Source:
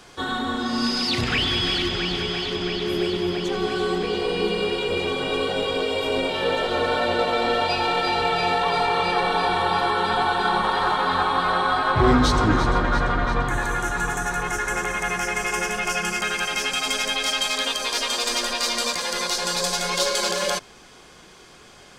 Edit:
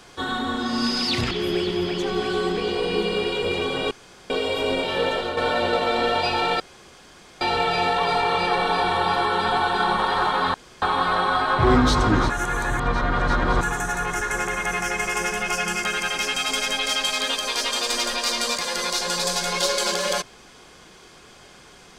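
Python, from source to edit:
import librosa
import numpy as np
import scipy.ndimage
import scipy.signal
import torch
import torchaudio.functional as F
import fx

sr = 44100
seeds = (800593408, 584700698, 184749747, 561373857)

y = fx.edit(x, sr, fx.cut(start_s=1.31, length_s=1.46),
    fx.room_tone_fill(start_s=5.37, length_s=0.39),
    fx.fade_out_to(start_s=6.49, length_s=0.34, curve='qsin', floor_db=-7.5),
    fx.insert_room_tone(at_s=8.06, length_s=0.81),
    fx.insert_room_tone(at_s=11.19, length_s=0.28),
    fx.reverse_span(start_s=12.67, length_s=1.31), tone=tone)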